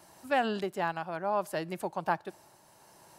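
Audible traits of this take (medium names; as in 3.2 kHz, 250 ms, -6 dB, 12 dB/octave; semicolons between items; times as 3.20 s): tremolo triangle 0.67 Hz, depth 50%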